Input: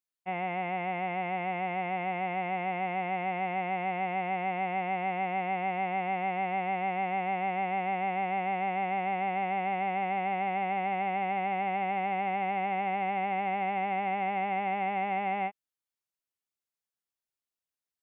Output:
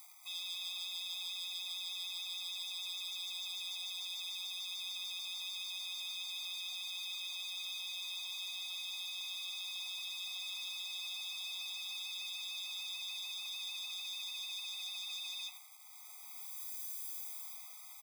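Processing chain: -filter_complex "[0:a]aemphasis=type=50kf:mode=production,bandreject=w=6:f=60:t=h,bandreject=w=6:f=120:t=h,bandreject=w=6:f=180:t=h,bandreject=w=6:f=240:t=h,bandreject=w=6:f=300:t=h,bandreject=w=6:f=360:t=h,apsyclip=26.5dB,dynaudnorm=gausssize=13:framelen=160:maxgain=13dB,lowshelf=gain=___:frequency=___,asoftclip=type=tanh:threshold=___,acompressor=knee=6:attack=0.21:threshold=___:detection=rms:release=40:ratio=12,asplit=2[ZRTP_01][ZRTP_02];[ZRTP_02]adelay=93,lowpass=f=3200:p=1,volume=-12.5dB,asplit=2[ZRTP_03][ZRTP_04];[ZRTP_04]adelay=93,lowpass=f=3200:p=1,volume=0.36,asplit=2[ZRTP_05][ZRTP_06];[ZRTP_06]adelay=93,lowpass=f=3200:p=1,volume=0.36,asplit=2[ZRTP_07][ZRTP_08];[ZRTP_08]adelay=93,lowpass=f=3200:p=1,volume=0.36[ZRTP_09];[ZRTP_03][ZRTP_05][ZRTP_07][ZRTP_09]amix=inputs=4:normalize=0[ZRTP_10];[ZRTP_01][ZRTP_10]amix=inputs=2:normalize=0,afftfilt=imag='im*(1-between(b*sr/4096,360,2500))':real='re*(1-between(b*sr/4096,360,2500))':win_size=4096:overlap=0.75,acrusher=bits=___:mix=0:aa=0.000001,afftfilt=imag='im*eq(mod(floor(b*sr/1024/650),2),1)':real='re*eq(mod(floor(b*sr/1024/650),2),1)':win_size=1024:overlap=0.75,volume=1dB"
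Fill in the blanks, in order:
-9, 290, -12.5dB, -27dB, 7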